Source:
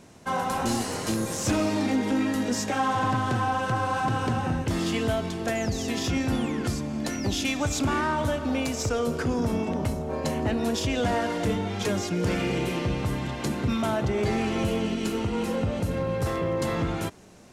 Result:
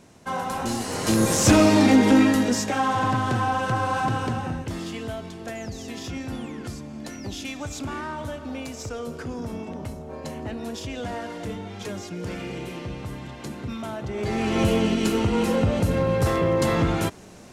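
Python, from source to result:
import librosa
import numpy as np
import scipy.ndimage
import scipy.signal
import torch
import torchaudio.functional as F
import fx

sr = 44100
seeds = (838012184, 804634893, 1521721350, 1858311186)

y = fx.gain(x, sr, db=fx.line((0.8, -1.0), (1.25, 9.0), (2.18, 9.0), (2.66, 2.0), (4.04, 2.0), (4.93, -6.5), (14.03, -6.5), (14.62, 5.5)))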